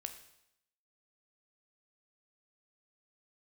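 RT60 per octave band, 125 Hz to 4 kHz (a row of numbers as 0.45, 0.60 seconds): 0.75, 0.80, 0.80, 0.80, 0.80, 0.80 seconds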